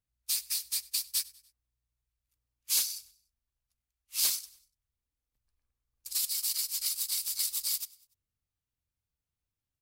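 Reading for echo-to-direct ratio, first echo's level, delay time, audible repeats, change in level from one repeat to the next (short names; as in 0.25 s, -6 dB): -21.0 dB, -22.0 dB, 97 ms, 2, -7.0 dB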